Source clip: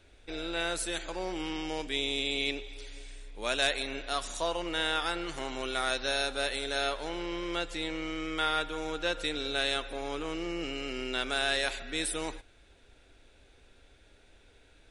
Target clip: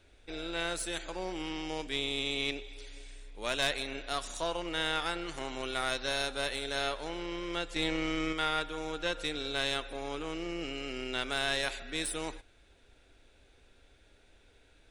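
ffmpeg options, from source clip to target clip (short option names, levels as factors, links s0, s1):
-filter_complex "[0:a]asettb=1/sr,asplit=3[s0][s1][s2];[s0]atrim=end=7.764[s3];[s1]atrim=start=7.76:end=8.33,asetpts=PTS-STARTPTS,afade=t=in:d=0.004:c=qsin,afade=t=out:st=0.566:d=0.004:c=qsin,acontrast=33[s4];[s2]atrim=start=8.326[s5];[s3][s4]acrossfade=d=0.004:c1=hsin:c2=qsin[s6];[s6][s5]acrossfade=d=0.004:c1=qsin:c2=hsin,aeval=exprs='(tanh(7.08*val(0)+0.55)-tanh(0.55))/7.08':c=same"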